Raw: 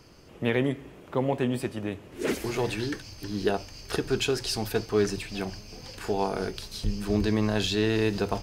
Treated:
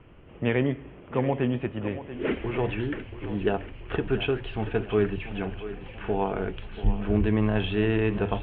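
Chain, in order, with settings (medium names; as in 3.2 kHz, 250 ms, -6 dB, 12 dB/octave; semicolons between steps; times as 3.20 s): steep low-pass 3.2 kHz 72 dB/octave; bass shelf 100 Hz +7.5 dB; on a send: thinning echo 684 ms, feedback 53%, high-pass 190 Hz, level -12 dB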